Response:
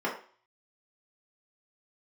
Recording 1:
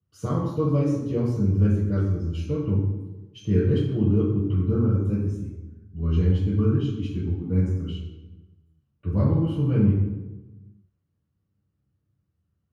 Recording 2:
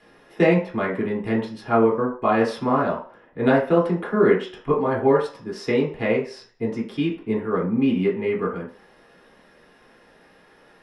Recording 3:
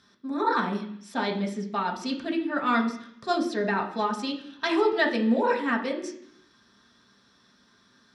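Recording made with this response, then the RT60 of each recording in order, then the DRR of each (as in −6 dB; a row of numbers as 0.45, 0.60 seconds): 2; 1.1, 0.45, 0.65 seconds; −7.5, −5.0, −0.5 decibels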